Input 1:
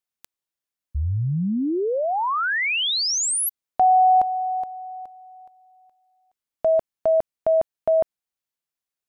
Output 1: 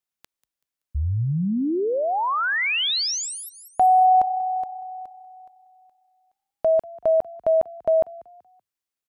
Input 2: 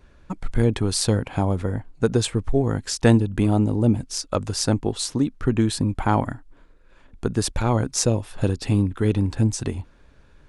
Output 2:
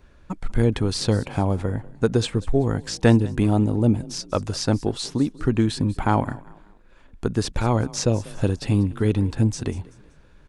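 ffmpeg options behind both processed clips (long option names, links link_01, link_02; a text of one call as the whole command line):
ffmpeg -i in.wav -filter_complex "[0:a]asplit=4[link_01][link_02][link_03][link_04];[link_02]adelay=190,afreqshift=31,volume=-21.5dB[link_05];[link_03]adelay=380,afreqshift=62,volume=-30.4dB[link_06];[link_04]adelay=570,afreqshift=93,volume=-39.2dB[link_07];[link_01][link_05][link_06][link_07]amix=inputs=4:normalize=0,acrossover=split=6200[link_08][link_09];[link_09]acompressor=threshold=-41dB:ratio=4:attack=1:release=60[link_10];[link_08][link_10]amix=inputs=2:normalize=0" out.wav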